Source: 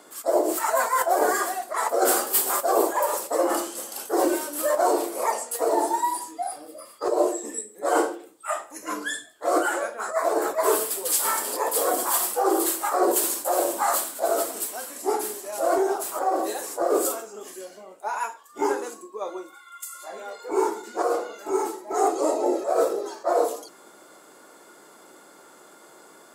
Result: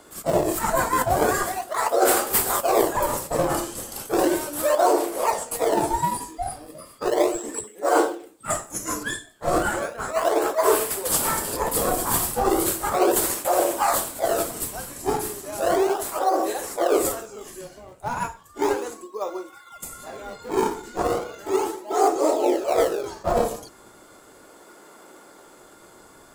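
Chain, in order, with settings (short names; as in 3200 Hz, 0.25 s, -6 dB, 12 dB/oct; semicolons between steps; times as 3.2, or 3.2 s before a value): 8.5–9.03 resonant high shelf 4800 Hz +9 dB, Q 1.5; in parallel at -8 dB: decimation with a swept rate 36×, swing 160% 0.35 Hz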